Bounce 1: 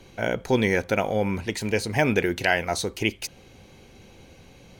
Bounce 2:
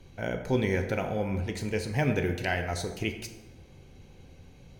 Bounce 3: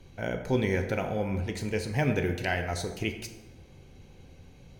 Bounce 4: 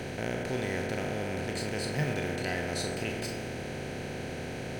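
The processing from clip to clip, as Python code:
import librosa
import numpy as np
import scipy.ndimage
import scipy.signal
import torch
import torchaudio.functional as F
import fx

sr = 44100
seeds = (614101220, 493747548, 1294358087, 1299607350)

y1 = fx.low_shelf(x, sr, hz=170.0, db=11.5)
y1 = fx.rev_plate(y1, sr, seeds[0], rt60_s=1.2, hf_ratio=0.55, predelay_ms=0, drr_db=5.5)
y1 = F.gain(torch.from_numpy(y1), -9.0).numpy()
y2 = y1
y3 = fx.bin_compress(y2, sr, power=0.2)
y3 = fx.noise_reduce_blind(y3, sr, reduce_db=12)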